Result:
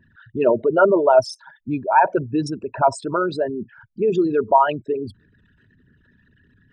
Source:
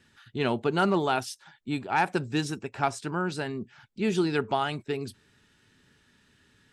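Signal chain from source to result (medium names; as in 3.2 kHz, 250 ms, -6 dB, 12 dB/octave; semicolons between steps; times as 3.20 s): resonances exaggerated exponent 3; peaking EQ 720 Hz -6 dB 0.38 oct; small resonant body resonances 640/950 Hz, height 17 dB, ringing for 40 ms; trim +5.5 dB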